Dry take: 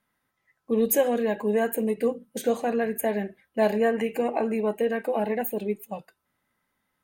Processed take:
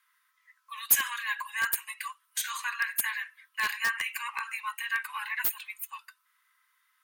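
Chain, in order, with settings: steep high-pass 1 kHz 96 dB/octave; in parallel at -5.5 dB: integer overflow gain 26 dB; on the sum: trim +3.5 dB

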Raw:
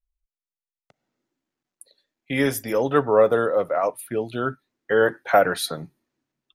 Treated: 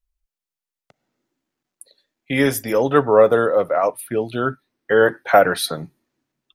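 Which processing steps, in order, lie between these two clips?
3.59–5.69 s: band-stop 7 kHz, Q 5.7; trim +4 dB

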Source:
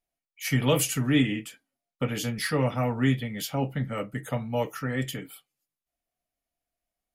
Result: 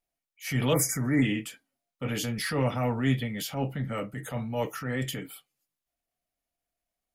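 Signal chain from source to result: spectral selection erased 0.74–1.23 s, 2.3–4.8 kHz; transient shaper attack -8 dB, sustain +2 dB

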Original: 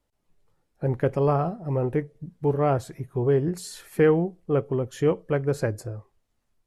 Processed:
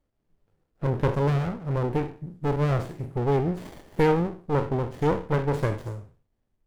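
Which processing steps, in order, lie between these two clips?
spectral sustain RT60 0.40 s; sliding maximum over 33 samples

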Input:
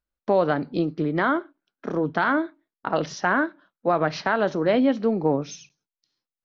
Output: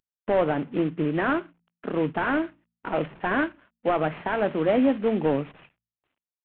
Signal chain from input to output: CVSD coder 16 kbps; de-hum 57.26 Hz, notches 4

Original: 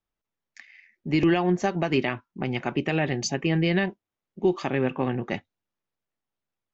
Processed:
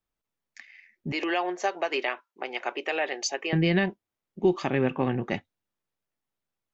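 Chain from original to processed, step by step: 1.12–3.53 s: high-pass 440 Hz 24 dB/octave

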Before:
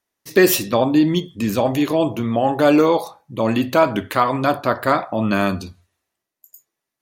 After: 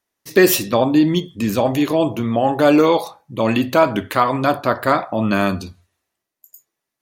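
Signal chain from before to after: 2.83–3.57 s: dynamic bell 2.7 kHz, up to +6 dB, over -40 dBFS, Q 1.2; trim +1 dB

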